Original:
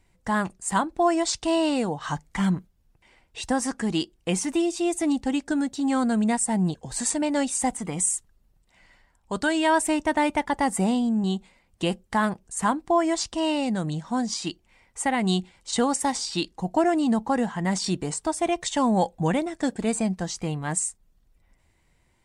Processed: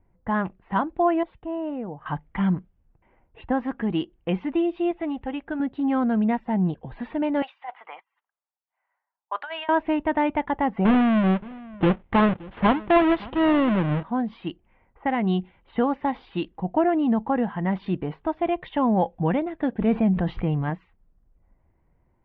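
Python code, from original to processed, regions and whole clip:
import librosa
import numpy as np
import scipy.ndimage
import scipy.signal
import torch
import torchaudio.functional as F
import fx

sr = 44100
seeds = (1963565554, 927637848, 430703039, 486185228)

y = fx.chain(x, sr, fx.spacing_loss(db_at_10k=42),
    fx.comb_fb(f0_hz=610.0, decay_s=0.16, harmonics='all', damping=0.0, mix_pct=50), at=(1.23, 2.06))
y = fx.chain(y, sr, fx.block_float(bits=7),
    fx.lowpass(hz=3900.0, slope=24),
    fx.peak_eq(hz=240.0, db=-8.0, octaves=1.1), at=(4.91, 5.6))
y = fx.chain(y, sr, fx.highpass(hz=790.0, slope=24),
    fx.over_compress(threshold_db=-33.0, ratio=-1.0),
    fx.band_widen(depth_pct=70), at=(7.42, 9.69))
y = fx.chain(y, sr, fx.halfwave_hold(),
    fx.echo_single(ms=572, db=-21.0), at=(10.85, 14.03))
y = fx.chain(y, sr, fx.low_shelf(hz=290.0, db=5.5),
    fx.sustainer(db_per_s=29.0), at=(19.78, 20.7))
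y = scipy.signal.sosfilt(scipy.signal.butter(8, 3300.0, 'lowpass', fs=sr, output='sos'), y)
y = fx.env_lowpass(y, sr, base_hz=1200.0, full_db=-24.0)
y = fx.high_shelf(y, sr, hz=2400.0, db=-9.5)
y = F.gain(torch.from_numpy(y), 1.0).numpy()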